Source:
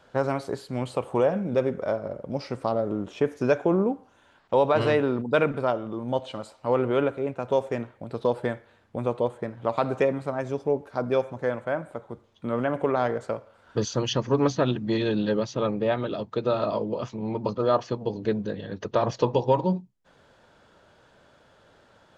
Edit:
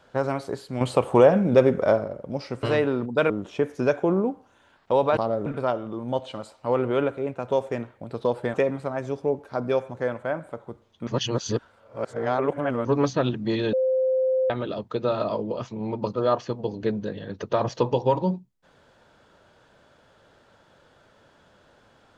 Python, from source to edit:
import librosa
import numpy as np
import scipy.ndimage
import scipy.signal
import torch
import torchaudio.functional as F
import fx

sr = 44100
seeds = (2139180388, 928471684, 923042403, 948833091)

y = fx.edit(x, sr, fx.clip_gain(start_s=0.81, length_s=1.23, db=7.0),
    fx.swap(start_s=2.63, length_s=0.29, other_s=4.79, other_length_s=0.67),
    fx.cut(start_s=8.54, length_s=1.42),
    fx.reverse_span(start_s=12.49, length_s=1.78),
    fx.bleep(start_s=15.15, length_s=0.77, hz=520.0, db=-19.0), tone=tone)